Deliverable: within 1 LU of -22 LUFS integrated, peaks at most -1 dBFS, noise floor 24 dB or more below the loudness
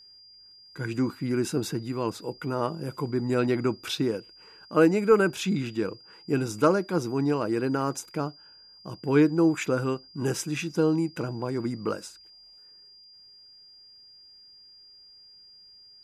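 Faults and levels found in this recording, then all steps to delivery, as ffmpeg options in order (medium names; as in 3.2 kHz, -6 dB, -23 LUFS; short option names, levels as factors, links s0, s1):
steady tone 4.8 kHz; tone level -50 dBFS; loudness -27.0 LUFS; peak level -7.5 dBFS; loudness target -22.0 LUFS
-> -af "bandreject=f=4800:w=30"
-af "volume=1.78"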